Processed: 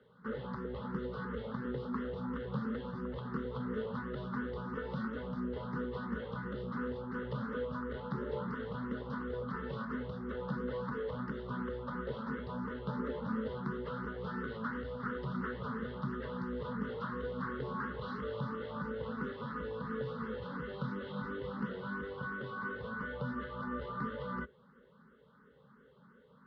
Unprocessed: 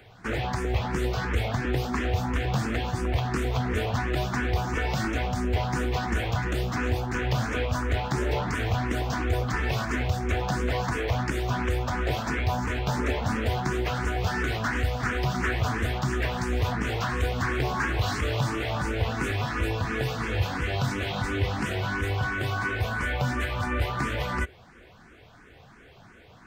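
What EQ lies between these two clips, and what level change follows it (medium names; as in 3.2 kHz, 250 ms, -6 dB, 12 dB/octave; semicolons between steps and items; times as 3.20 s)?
distance through air 290 m; cabinet simulation 120–3900 Hz, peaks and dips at 120 Hz -4 dB, 340 Hz -5 dB, 690 Hz -10 dB, 980 Hz -6 dB, 1.7 kHz -7 dB, 2.4 kHz -6 dB; static phaser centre 480 Hz, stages 8; -2.5 dB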